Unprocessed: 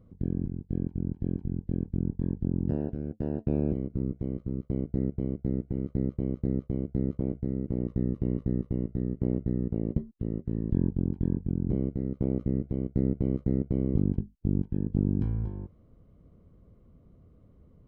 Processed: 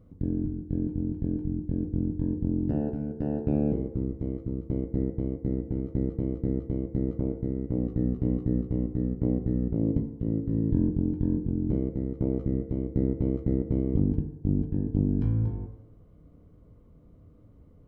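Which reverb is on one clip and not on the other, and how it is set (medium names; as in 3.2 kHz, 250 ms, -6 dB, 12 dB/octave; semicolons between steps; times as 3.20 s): FDN reverb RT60 1 s, low-frequency decay 0.75×, high-frequency decay 0.35×, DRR 5.5 dB; trim +1 dB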